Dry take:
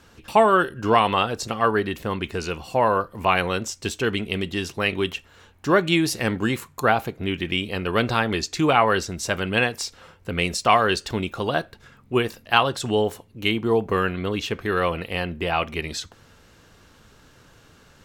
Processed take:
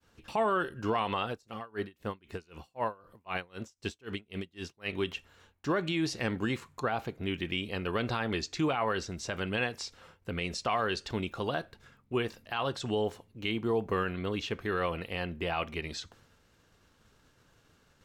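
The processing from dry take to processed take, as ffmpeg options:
-filter_complex "[0:a]asettb=1/sr,asplit=3[a][b][c];[a]atrim=end=1.314[d];[b]atrim=start=1.31:end=4.94,asetpts=PTS-STARTPTS,afade=t=in:d=0.004:c=qsin,afade=t=out:st=3.626:d=0.004:c=qsin,aeval=exprs='val(0)*pow(10,-30*(0.5-0.5*cos(2*PI*3.9*n/s))/20)':c=same[e];[c]atrim=start=4.936[f];[d][e]acrossfade=d=0.004:c1=hsin:c2=qsin[g];[g][f]acrossfade=d=0.004:c1=qsin:c2=hsin,agate=range=-33dB:threshold=-47dB:ratio=3:detection=peak,acrossover=split=7000[h][i];[i]acompressor=threshold=-56dB:ratio=4:attack=1:release=60[j];[h][j]amix=inputs=2:normalize=0,alimiter=limit=-12.5dB:level=0:latency=1:release=61,volume=-7.5dB"

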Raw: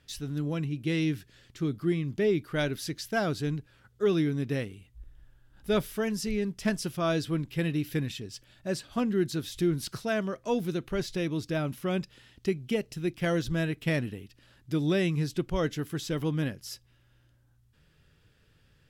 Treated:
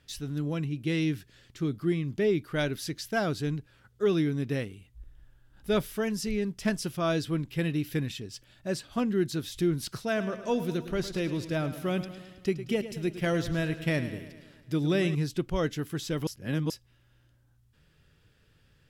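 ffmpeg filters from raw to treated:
-filter_complex "[0:a]asettb=1/sr,asplit=3[a][b][c];[a]atrim=end=10.064[d];[b]atrim=start=10.06:end=15.15,asetpts=PTS-STARTPTS,afade=t=in:d=0.004:c=qsin,afade=t=out:st=5.086:d=0.004:c=qsin,aecho=1:1:107|214|321|428|535|642|749:0.237|0.14|0.0825|0.0487|0.0287|0.017|0.01,atrim=end_sample=224469[e];[c]atrim=start=15.146[f];[d][e]acrossfade=d=0.004:c1=hsin:c2=qsin[g];[g][f]acrossfade=d=0.004:c1=qsin:c2=hsin,asplit=3[h][i][j];[h]atrim=end=16.272[k];[i]atrim=start=16.268:end=16.702,asetpts=PTS-STARTPTS,areverse[l];[j]atrim=start=16.698[m];[k][l]acrossfade=d=0.004:c1=hsin:c2=hsin[n];[n][m]acrossfade=d=0.004:c1=hsin:c2=hsin"

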